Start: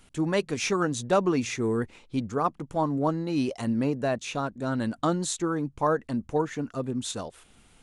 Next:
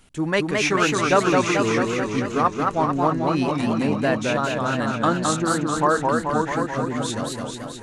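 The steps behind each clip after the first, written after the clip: dynamic EQ 1800 Hz, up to +8 dB, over -43 dBFS, Q 0.81; warbling echo 0.218 s, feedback 68%, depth 162 cents, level -3 dB; gain +2 dB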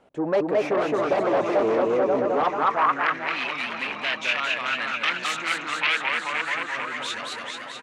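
echo 0.969 s -12.5 dB; sine folder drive 12 dB, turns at -5.5 dBFS; band-pass sweep 590 Hz -> 2400 Hz, 2.27–3.38; gain -5 dB

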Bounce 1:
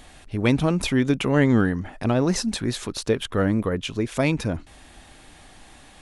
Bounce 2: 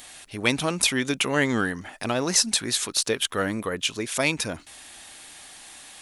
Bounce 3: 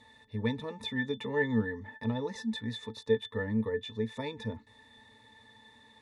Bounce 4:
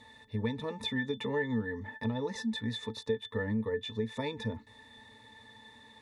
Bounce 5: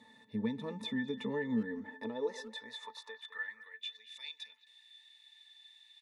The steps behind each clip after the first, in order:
tilt +3.5 dB/oct
in parallel at -2 dB: compressor, threshold -30 dBFS, peak gain reduction 13.5 dB; on the sum: octave resonator A, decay 0.1 s
compressor 4:1, threshold -32 dBFS, peak gain reduction 9.5 dB; gain +3 dB
high-pass sweep 190 Hz -> 3000 Hz, 1.6–3.96; speakerphone echo 0.21 s, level -15 dB; gain -6 dB

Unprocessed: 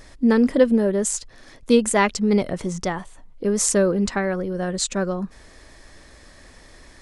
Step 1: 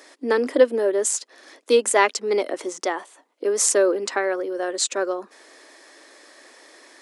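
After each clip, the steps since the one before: steep high-pass 290 Hz 48 dB/oct; gain +1.5 dB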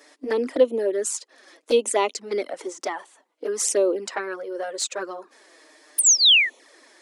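painted sound fall, 5.98–6.5, 1700–9800 Hz -12 dBFS; envelope flanger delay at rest 7.3 ms, full sweep at -15.5 dBFS; gain -1 dB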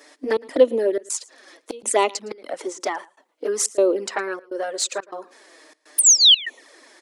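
step gate "xxx.xxxx.xx" 123 bpm -24 dB; echo 0.112 s -23 dB; gain +3 dB

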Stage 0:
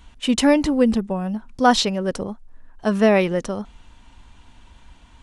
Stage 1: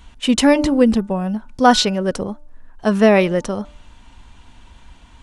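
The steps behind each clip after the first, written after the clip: de-hum 295.5 Hz, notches 5; gain +3.5 dB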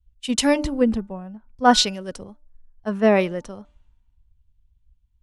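three-band expander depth 100%; gain -9 dB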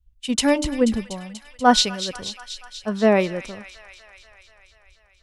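thin delay 0.242 s, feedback 71%, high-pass 1800 Hz, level -10 dB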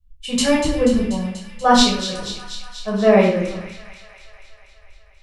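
reverb RT60 0.55 s, pre-delay 9 ms, DRR -4.5 dB; gain -4.5 dB

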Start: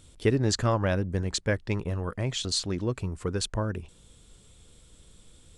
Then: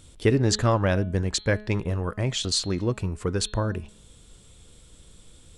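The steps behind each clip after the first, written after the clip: de-hum 211.6 Hz, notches 20; gain +3.5 dB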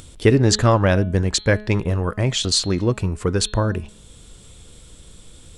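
upward compressor, threshold -45 dBFS; gain +6 dB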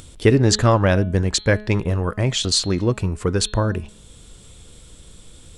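nothing audible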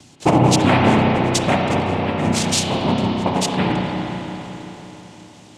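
noise vocoder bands 4; spring tank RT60 3.9 s, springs 32/55 ms, chirp 60 ms, DRR -1.5 dB; gain -1 dB

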